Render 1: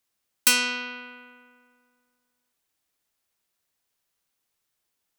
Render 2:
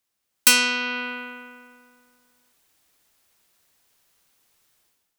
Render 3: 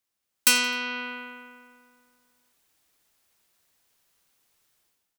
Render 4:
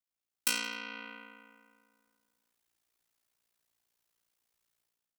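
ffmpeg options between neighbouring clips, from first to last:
ffmpeg -i in.wav -af "dynaudnorm=framelen=100:gausssize=7:maxgain=13dB" out.wav
ffmpeg -i in.wav -af "aecho=1:1:86|172|258:0.0944|0.0406|0.0175,volume=-4dB" out.wav
ffmpeg -i in.wav -af "aeval=exprs='val(0)*sin(2*PI*29*n/s)':channel_layout=same,volume=-8.5dB" out.wav

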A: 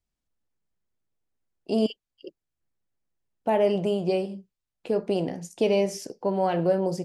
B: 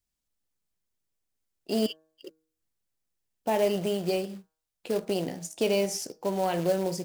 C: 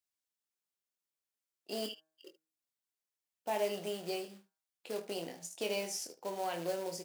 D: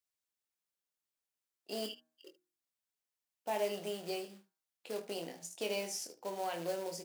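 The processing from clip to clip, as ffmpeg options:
ffmpeg -i in.wav -af "highshelf=frequency=3300:gain=10,acrusher=bits=4:mode=log:mix=0:aa=0.000001,bandreject=frequency=158.4:width_type=h:width=4,bandreject=frequency=316.8:width_type=h:width=4,bandreject=frequency=475.2:width_type=h:width=4,bandreject=frequency=633.6:width_type=h:width=4,bandreject=frequency=792:width_type=h:width=4,bandreject=frequency=950.4:width_type=h:width=4,bandreject=frequency=1108.8:width_type=h:width=4,bandreject=frequency=1267.2:width_type=h:width=4,bandreject=frequency=1425.6:width_type=h:width=4,bandreject=frequency=1584:width_type=h:width=4,bandreject=frequency=1742.4:width_type=h:width=4,volume=-3.5dB" out.wav
ffmpeg -i in.wav -filter_complex "[0:a]highpass=frequency=620:poles=1,asplit=2[link_01][link_02];[link_02]aecho=0:1:24|75:0.447|0.158[link_03];[link_01][link_03]amix=inputs=2:normalize=0,volume=-6.5dB" out.wav
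ffmpeg -i in.wav -af "bandreject=frequency=60:width_type=h:width=6,bandreject=frequency=120:width_type=h:width=6,bandreject=frequency=180:width_type=h:width=6,bandreject=frequency=240:width_type=h:width=6,bandreject=frequency=300:width_type=h:width=6,bandreject=frequency=360:width_type=h:width=6,volume=-1dB" out.wav

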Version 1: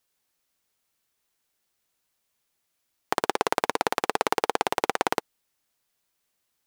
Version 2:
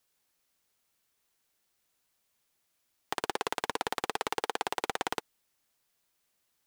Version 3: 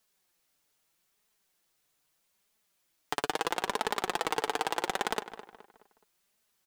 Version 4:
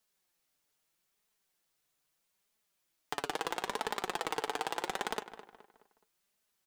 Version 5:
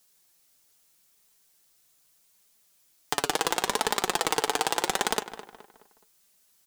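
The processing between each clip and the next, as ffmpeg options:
ffmpeg -i in.wav -filter_complex "[0:a]acrossover=split=1400[link_01][link_02];[link_01]alimiter=limit=-15.5dB:level=0:latency=1:release=83[link_03];[link_03][link_02]amix=inputs=2:normalize=0,asoftclip=type=tanh:threshold=-18.5dB" out.wav
ffmpeg -i in.wav -filter_complex "[0:a]flanger=delay=4.5:depth=2.6:regen=29:speed=0.78:shape=triangular,asplit=2[link_01][link_02];[link_02]adelay=211,lowpass=frequency=2900:poles=1,volume=-12.5dB,asplit=2[link_03][link_04];[link_04]adelay=211,lowpass=frequency=2900:poles=1,volume=0.42,asplit=2[link_05][link_06];[link_06]adelay=211,lowpass=frequency=2900:poles=1,volume=0.42,asplit=2[link_07][link_08];[link_08]adelay=211,lowpass=frequency=2900:poles=1,volume=0.42[link_09];[link_01][link_03][link_05][link_07][link_09]amix=inputs=5:normalize=0,volume=5.5dB" out.wav
ffmpeg -i in.wav -af "flanger=delay=4.7:depth=3.5:regen=-81:speed=0.97:shape=triangular" out.wav
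ffmpeg -i in.wav -af "bass=frequency=250:gain=2,treble=frequency=4000:gain=8,volume=8dB" out.wav

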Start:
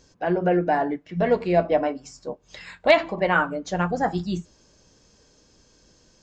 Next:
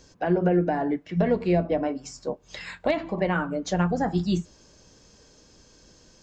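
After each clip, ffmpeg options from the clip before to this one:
ffmpeg -i in.wav -filter_complex "[0:a]acrossover=split=340[link_01][link_02];[link_02]acompressor=threshold=-28dB:ratio=8[link_03];[link_01][link_03]amix=inputs=2:normalize=0,volume=3dB" out.wav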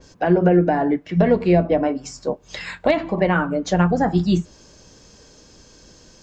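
ffmpeg -i in.wav -af "adynamicequalizer=threshold=0.00501:dfrequency=3500:dqfactor=0.7:tfrequency=3500:tqfactor=0.7:attack=5:release=100:ratio=0.375:range=2:mode=cutabove:tftype=highshelf,volume=6.5dB" out.wav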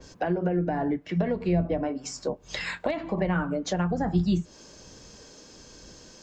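ffmpeg -i in.wav -filter_complex "[0:a]acrossover=split=160[link_01][link_02];[link_01]tremolo=f=1.2:d=0.72[link_03];[link_02]acompressor=threshold=-27dB:ratio=4[link_04];[link_03][link_04]amix=inputs=2:normalize=0" out.wav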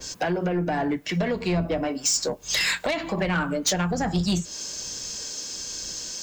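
ffmpeg -i in.wav -af "crystalizer=i=8:c=0,asoftclip=type=tanh:threshold=-19.5dB,volume=2dB" out.wav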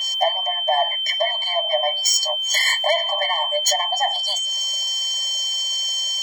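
ffmpeg -i in.wav -af "aeval=exprs='val(0)+0.0355*sin(2*PI*3100*n/s)':channel_layout=same,afftfilt=real='re*eq(mod(floor(b*sr/1024/580),2),1)':imag='im*eq(mod(floor(b*sr/1024/580),2),1)':win_size=1024:overlap=0.75,volume=8dB" out.wav

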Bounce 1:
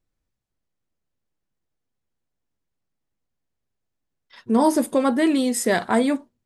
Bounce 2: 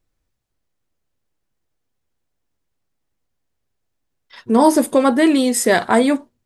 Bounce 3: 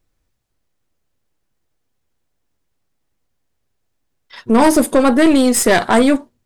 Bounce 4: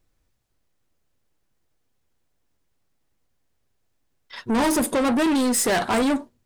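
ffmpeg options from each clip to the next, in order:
ffmpeg -i in.wav -af "equalizer=frequency=190:width_type=o:width=0.74:gain=-4,volume=6dB" out.wav
ffmpeg -i in.wav -af "aeval=exprs='(tanh(3.98*val(0)+0.45)-tanh(0.45))/3.98':channel_layout=same,volume=6dB" out.wav
ffmpeg -i in.wav -af "asoftclip=type=tanh:threshold=-17dB,volume=-1dB" out.wav

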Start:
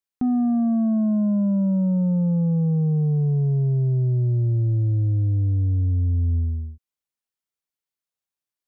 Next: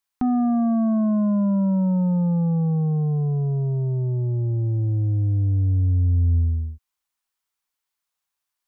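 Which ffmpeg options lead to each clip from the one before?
ffmpeg -i in.wav -af "equalizer=frequency=125:width_type=o:width=1:gain=-9,equalizer=frequency=250:width_type=o:width=1:gain=-4,equalizer=frequency=500:width_type=o:width=1:gain=-7,equalizer=frequency=1000:width_type=o:width=1:gain=5,volume=7dB" out.wav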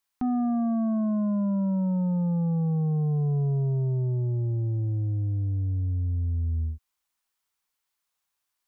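ffmpeg -i in.wav -af "alimiter=limit=-24dB:level=0:latency=1:release=123,volume=1.5dB" out.wav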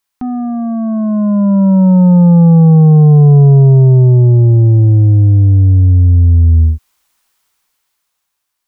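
ffmpeg -i in.wav -af "dynaudnorm=framelen=270:gausssize=11:maxgain=13dB,volume=7dB" out.wav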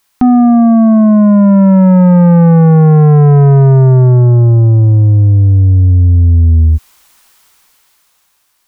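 ffmpeg -i in.wav -af "asoftclip=type=tanh:threshold=-8dB,alimiter=level_in=17dB:limit=-1dB:release=50:level=0:latency=1,volume=-2.5dB" out.wav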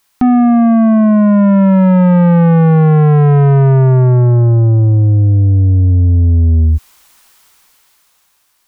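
ffmpeg -i in.wav -af "asoftclip=type=tanh:threshold=-4.5dB" out.wav

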